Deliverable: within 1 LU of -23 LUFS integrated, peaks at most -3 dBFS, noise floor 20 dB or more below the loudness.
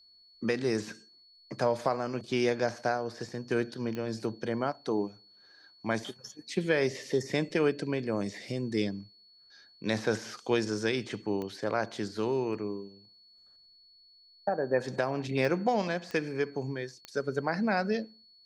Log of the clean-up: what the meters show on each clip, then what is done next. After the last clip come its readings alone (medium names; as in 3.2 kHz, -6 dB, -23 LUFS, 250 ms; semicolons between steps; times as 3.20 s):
clicks found 5; steady tone 4.4 kHz; tone level -57 dBFS; loudness -32.0 LUFS; peak level -13.5 dBFS; loudness target -23.0 LUFS
-> de-click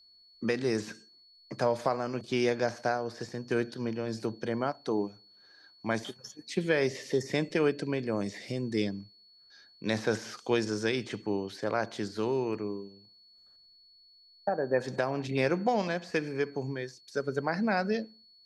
clicks found 0; steady tone 4.4 kHz; tone level -57 dBFS
-> band-stop 4.4 kHz, Q 30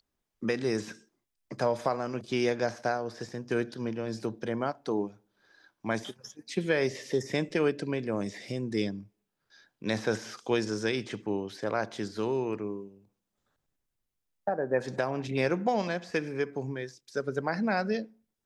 steady tone not found; loudness -32.0 LUFS; peak level -13.5 dBFS; loudness target -23.0 LUFS
-> trim +9 dB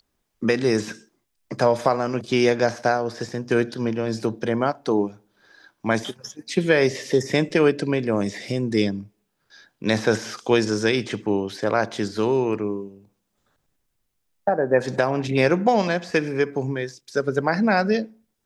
loudness -23.0 LUFS; peak level -4.5 dBFS; noise floor -75 dBFS